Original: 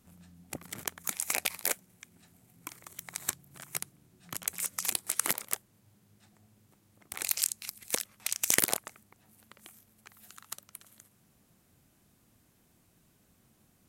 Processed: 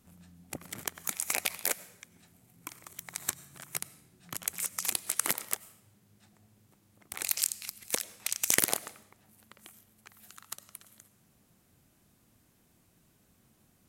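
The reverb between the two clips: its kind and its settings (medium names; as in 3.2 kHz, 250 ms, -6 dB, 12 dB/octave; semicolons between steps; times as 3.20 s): algorithmic reverb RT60 0.81 s, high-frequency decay 0.95×, pre-delay 55 ms, DRR 18 dB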